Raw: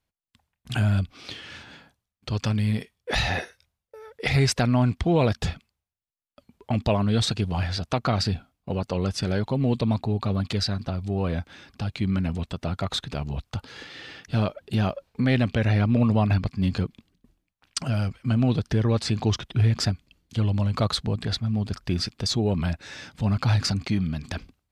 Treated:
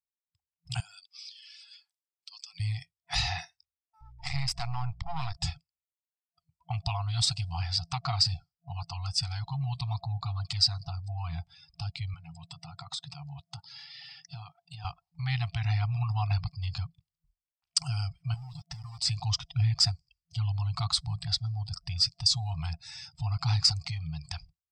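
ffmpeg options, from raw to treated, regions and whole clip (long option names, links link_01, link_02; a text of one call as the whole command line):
ffmpeg -i in.wav -filter_complex "[0:a]asettb=1/sr,asplit=3[link_01][link_02][link_03];[link_01]atrim=end=0.804[link_04];[link_02]atrim=start=0.8:end=2.6,asetpts=PTS-STARTPTS,afade=type=in:duration=0.004:curve=qsin,afade=type=out:start_time=1.796:duration=0.004:curve=qsin,highpass=1200,highshelf=frequency=5000:gain=9.5,acompressor=threshold=-41dB:ratio=8:attack=3.2:release=140:knee=1:detection=peak[link_05];[link_03]atrim=start=2.596[link_06];[link_04][link_05]acrossfade=duration=0.004:curve1=hsin:curve2=qsin[link_07];[link_07][link_06]acrossfade=duration=0.004:curve1=qsin:curve2=hsin,asettb=1/sr,asplit=3[link_08][link_09][link_10];[link_08]atrim=end=4.014[link_11];[link_09]atrim=start=4.01:end=5.37,asetpts=PTS-STARTPTS,afade=type=in:duration=0.004:curve=qsin,afade=type=out:start_time=1.356:duration=0.004:curve=qsin,lowpass=frequency=3300:poles=1,aeval=exprs='max(val(0),0)':channel_layout=same,aeval=exprs='val(0)+0.00631*(sin(2*PI*60*n/s)+sin(2*PI*2*60*n/s)/2+sin(2*PI*3*60*n/s)/3+sin(2*PI*4*60*n/s)/4+sin(2*PI*5*60*n/s)/5)':channel_layout=same[link_12];[link_10]atrim=start=5.366[link_13];[link_11][link_12]acrossfade=duration=0.004:curve1=hsin:curve2=qsin[link_14];[link_14][link_13]acrossfade=duration=0.004:curve1=qsin:curve2=hsin,asettb=1/sr,asplit=3[link_15][link_16][link_17];[link_15]atrim=end=12.144[link_18];[link_16]atrim=start=12.14:end=14.85,asetpts=PTS-STARTPTS,afade=type=in:duration=0.004:curve=qsin,afade=type=out:start_time=2.706:duration=0.004:curve=qsin,highpass=frequency=120:width=0.5412,highpass=frequency=120:width=1.3066,acompressor=threshold=-30dB:ratio=6:attack=3.2:release=140:knee=1:detection=peak[link_19];[link_17]atrim=start=14.846[link_20];[link_18][link_19]acrossfade=duration=0.004:curve1=hsin:curve2=qsin[link_21];[link_21][link_20]acrossfade=duration=0.004:curve1=qsin:curve2=hsin,asettb=1/sr,asplit=3[link_22][link_23][link_24];[link_22]atrim=end=18.344[link_25];[link_23]atrim=start=18.34:end=18.99,asetpts=PTS-STARTPTS,afade=type=in:duration=0.004:curve=qsin,afade=type=out:start_time=0.646:duration=0.004:curve=qsin,aecho=1:1:6.7:0.52,atrim=end_sample=28665,acompressor=threshold=-30dB:ratio=20:attack=3.2:release=140:knee=1:detection=peak,aeval=exprs='val(0)*gte(abs(val(0)),0.0133)':channel_layout=same[link_26];[link_24]atrim=start=18.986[link_27];[link_25][link_26]acrossfade=duration=0.004:curve1=hsin:curve2=qsin[link_28];[link_28][link_27]acrossfade=duration=0.004:curve1=qsin:curve2=hsin,equalizer=frequency=1600:width_type=o:width=0.33:gain=-9,equalizer=frequency=5000:width_type=o:width=0.33:gain=12,equalizer=frequency=8000:width_type=o:width=0.33:gain=10,afftdn=noise_reduction=21:noise_floor=-45,afftfilt=real='re*(1-between(b*sr/4096,170,680))':imag='im*(1-between(b*sr/4096,170,680))':win_size=4096:overlap=0.75,volume=-5.5dB" out.wav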